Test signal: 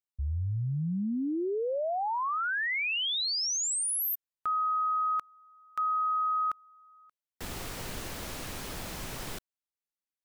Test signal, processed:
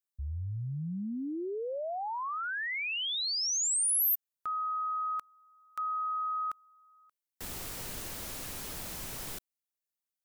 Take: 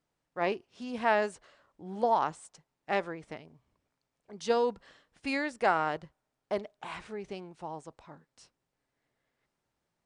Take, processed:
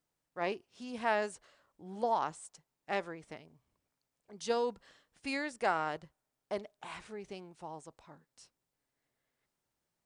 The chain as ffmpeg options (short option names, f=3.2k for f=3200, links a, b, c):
-af "highshelf=f=6.3k:g=10,volume=-5dB"